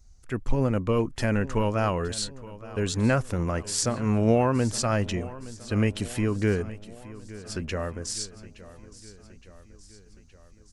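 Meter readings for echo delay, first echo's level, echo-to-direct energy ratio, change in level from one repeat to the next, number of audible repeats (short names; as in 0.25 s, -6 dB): 0.868 s, -17.5 dB, -15.5 dB, -4.5 dB, 4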